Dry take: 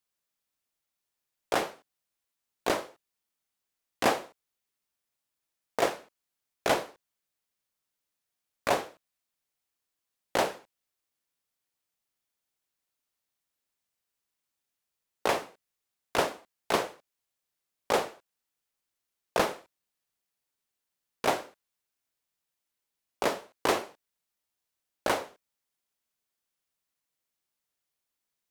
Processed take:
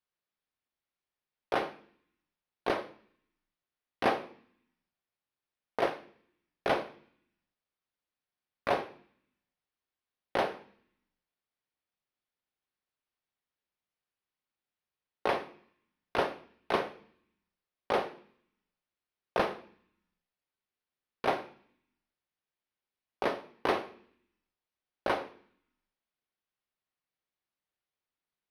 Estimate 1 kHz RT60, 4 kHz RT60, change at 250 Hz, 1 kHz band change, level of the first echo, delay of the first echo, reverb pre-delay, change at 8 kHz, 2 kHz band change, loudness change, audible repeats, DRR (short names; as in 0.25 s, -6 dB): 0.70 s, 0.80 s, -2.0 dB, -2.0 dB, none, none, 3 ms, under -15 dB, -3.0 dB, -3.0 dB, none, 10.0 dB